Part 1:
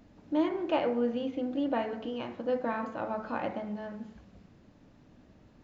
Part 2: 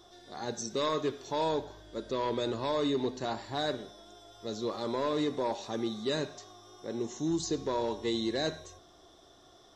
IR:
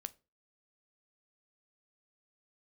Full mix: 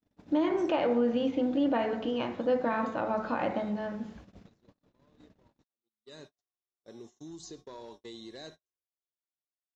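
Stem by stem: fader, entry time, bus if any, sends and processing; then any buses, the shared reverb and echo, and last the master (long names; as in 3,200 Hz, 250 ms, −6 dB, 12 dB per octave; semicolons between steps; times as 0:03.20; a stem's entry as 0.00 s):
+3.0 dB, 0.00 s, send −8 dB, low-shelf EQ 83 Hz −4 dB
−10.5 dB, 0.00 s, send −10.5 dB, hum removal 88.67 Hz, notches 3; downward compressor 2 to 1, threshold −38 dBFS, peak gain reduction 6.5 dB; high-shelf EQ 2,800 Hz +3.5 dB; automatic ducking −21 dB, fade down 0.30 s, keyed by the first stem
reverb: on, RT60 0.30 s, pre-delay 6 ms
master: noise gate −49 dBFS, range −45 dB; brickwall limiter −19 dBFS, peak gain reduction 8 dB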